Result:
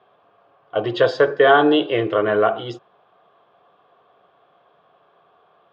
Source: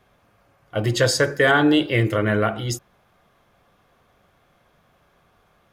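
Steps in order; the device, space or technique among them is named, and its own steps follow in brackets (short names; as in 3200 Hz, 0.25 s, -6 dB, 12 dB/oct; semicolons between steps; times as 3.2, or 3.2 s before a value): kitchen radio (speaker cabinet 210–3500 Hz, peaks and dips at 230 Hz -7 dB, 430 Hz +7 dB, 700 Hz +8 dB, 1100 Hz +7 dB, 2100 Hz -8 dB, 3300 Hz +4 dB)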